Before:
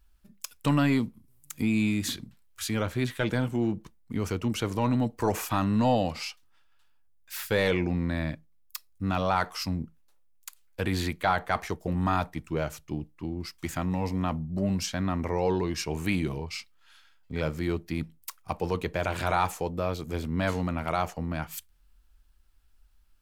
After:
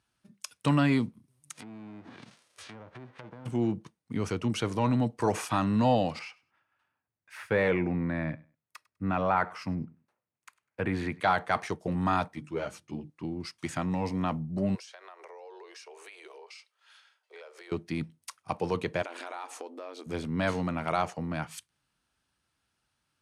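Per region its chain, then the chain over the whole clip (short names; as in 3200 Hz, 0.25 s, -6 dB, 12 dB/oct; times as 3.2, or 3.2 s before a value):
1.52–3.45 spectral whitening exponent 0.3 + treble ducked by the level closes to 840 Hz, closed at -25 dBFS + compressor, threshold -43 dBFS
6.19–11.2 band shelf 6300 Hz -13.5 dB 2.3 oct + feedback echo 0.1 s, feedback 20%, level -23 dB
12.28–13.1 notches 50/100/150/200/250/300/350 Hz + ensemble effect
14.75–17.72 steep high-pass 390 Hz 72 dB/oct + compressor 8:1, threshold -45 dBFS
19.02–20.06 compressor, threshold -35 dBFS + brick-wall FIR high-pass 230 Hz
whole clip: Chebyshev band-pass 110–9400 Hz, order 3; notch 7400 Hz, Q 9.8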